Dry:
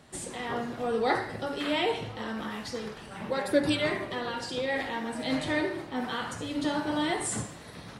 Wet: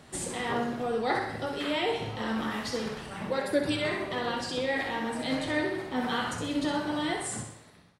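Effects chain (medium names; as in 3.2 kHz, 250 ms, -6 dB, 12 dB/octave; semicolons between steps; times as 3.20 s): fade out at the end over 1.47 s; feedback delay 63 ms, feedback 46%, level -7.5 dB; gain riding within 3 dB 0.5 s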